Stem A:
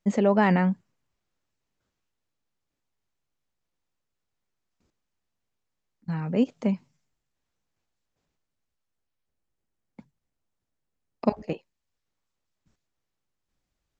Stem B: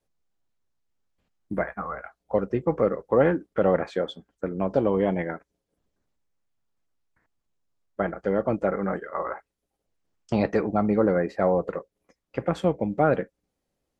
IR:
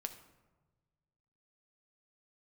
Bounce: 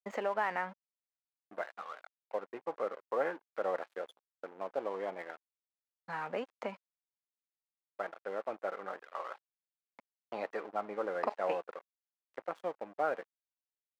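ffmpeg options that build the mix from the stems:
-filter_complex "[0:a]equalizer=f=1500:w=0.53:g=8,acompressor=threshold=0.0708:ratio=12,volume=1.12[s0];[1:a]equalizer=f=1600:w=0.51:g=2,volume=0.473[s1];[s0][s1]amix=inputs=2:normalize=0,aeval=exprs='sgn(val(0))*max(abs(val(0))-0.00668,0)':c=same,highpass=670,highshelf=f=2400:g=-11.5"

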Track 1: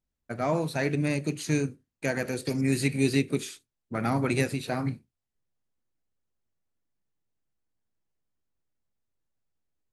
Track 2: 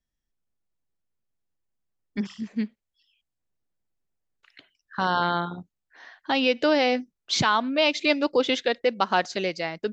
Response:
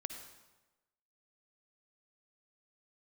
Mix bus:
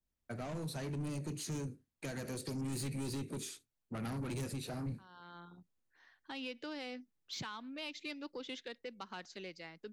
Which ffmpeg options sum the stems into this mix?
-filter_complex "[0:a]adynamicequalizer=threshold=0.00501:dfrequency=2200:dqfactor=0.81:tfrequency=2200:tqfactor=0.81:attack=5:release=100:ratio=0.375:range=3:mode=cutabove:tftype=bell,asoftclip=type=tanh:threshold=0.0422,volume=0.708,asplit=2[s0][s1];[1:a]equalizer=f=650:t=o:w=0.62:g=-7.5,volume=0.133[s2];[s1]apad=whole_len=437677[s3];[s2][s3]sidechaincompress=threshold=0.002:ratio=16:attack=16:release=545[s4];[s0][s4]amix=inputs=2:normalize=0,acrossover=split=240|3000[s5][s6][s7];[s6]acompressor=threshold=0.00891:ratio=6[s8];[s5][s8][s7]amix=inputs=3:normalize=0,asoftclip=type=tanh:threshold=0.0224"

